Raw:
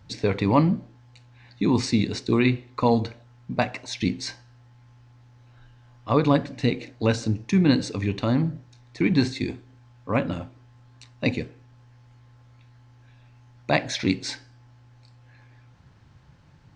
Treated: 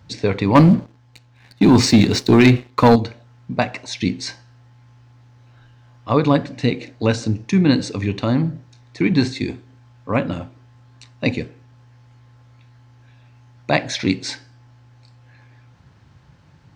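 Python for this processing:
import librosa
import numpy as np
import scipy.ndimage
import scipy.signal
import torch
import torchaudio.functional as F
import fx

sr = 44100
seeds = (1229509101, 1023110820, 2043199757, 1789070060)

y = scipy.signal.sosfilt(scipy.signal.butter(2, 52.0, 'highpass', fs=sr, output='sos'), x)
y = fx.leveller(y, sr, passes=2, at=(0.55, 2.96))
y = y * librosa.db_to_amplitude(4.0)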